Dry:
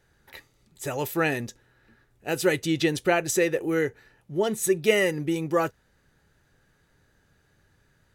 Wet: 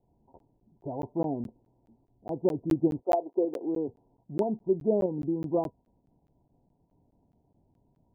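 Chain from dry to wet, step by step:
0:03.01–0:03.87: high-pass filter 450 Hz → 170 Hz 24 dB per octave
in parallel at −2.5 dB: output level in coarse steps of 22 dB
on the sum: Chebyshev low-pass with heavy ripple 1,000 Hz, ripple 9 dB
regular buffer underruns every 0.21 s, samples 512, zero, from 0:00.39

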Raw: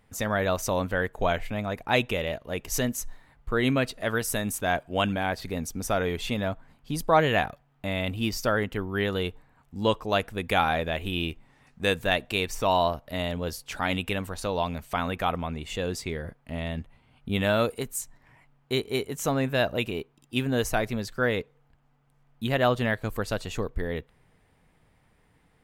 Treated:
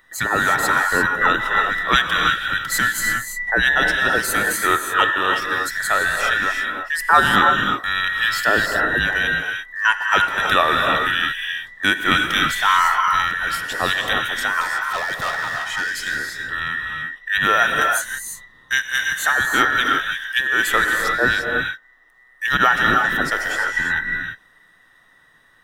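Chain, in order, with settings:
frequency inversion band by band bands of 2,000 Hz
0:14.61–0:16.20: hard clipping −28 dBFS, distortion −21 dB
reverb whose tail is shaped and stops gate 370 ms rising, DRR 2 dB
level +6.5 dB

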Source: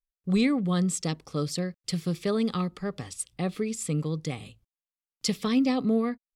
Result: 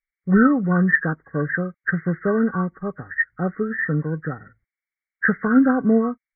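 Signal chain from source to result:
hearing-aid frequency compression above 1,100 Hz 4 to 1
expander for the loud parts 1.5 to 1, over −47 dBFS
level +9 dB

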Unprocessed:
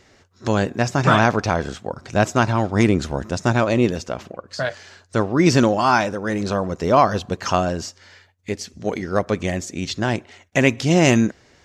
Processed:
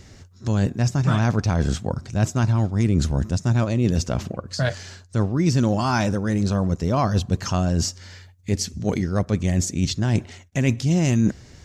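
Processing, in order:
bass and treble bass +15 dB, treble +8 dB
reversed playback
downward compressor 4 to 1, threshold −18 dBFS, peak gain reduction 14.5 dB
reversed playback

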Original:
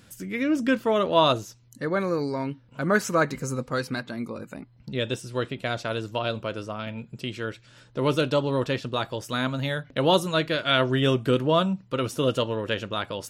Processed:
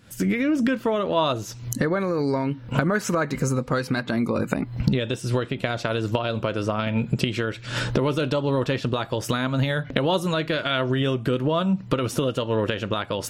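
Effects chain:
camcorder AGC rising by 79 dB per second
bass and treble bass +1 dB, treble −4 dB
level −2.5 dB

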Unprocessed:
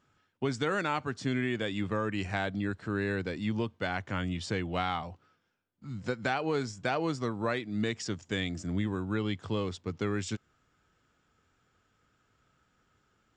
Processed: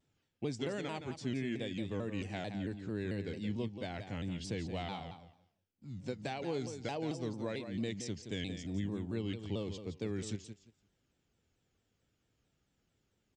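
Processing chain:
parametric band 1,300 Hz −14.5 dB 0.87 octaves
on a send: repeating echo 171 ms, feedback 20%, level −9 dB
on the sum: pitch modulation by a square or saw wave saw down 4.5 Hz, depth 160 cents
level −5.5 dB

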